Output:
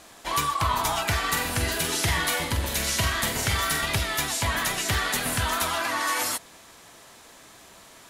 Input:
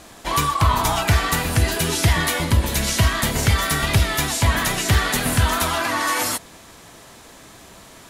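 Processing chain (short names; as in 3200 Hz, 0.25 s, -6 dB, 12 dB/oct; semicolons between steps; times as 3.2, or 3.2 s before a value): low shelf 350 Hz -8 dB; 1.2–3.81 flutter echo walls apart 7.7 m, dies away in 0.38 s; gain -4 dB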